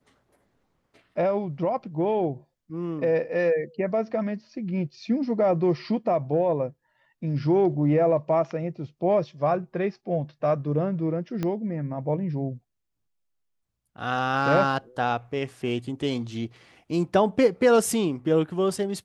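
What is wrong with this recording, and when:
0:11.43: click −16 dBFS

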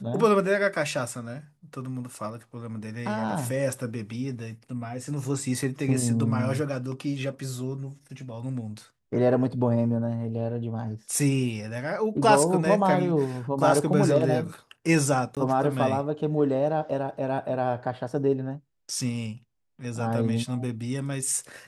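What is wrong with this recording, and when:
0:15.35–0:15.37: drop-out 17 ms

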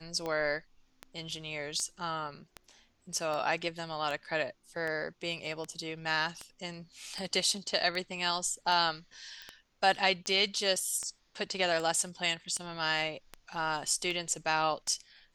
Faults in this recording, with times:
scratch tick 78 rpm −23 dBFS
0:09.42: click −30 dBFS

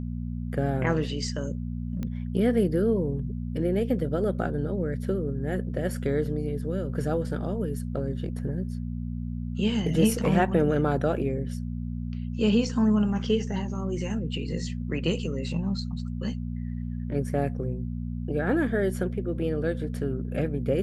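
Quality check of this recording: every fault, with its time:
mains hum 60 Hz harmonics 4 −32 dBFS
0:02.03: click −21 dBFS

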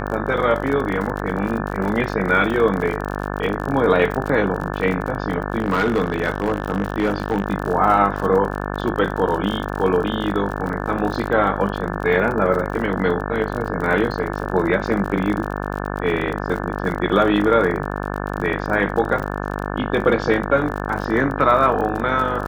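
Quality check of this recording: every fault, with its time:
mains buzz 50 Hz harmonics 35 −26 dBFS
surface crackle 45 per second −26 dBFS
0:05.58–0:07.46: clipping −13.5 dBFS

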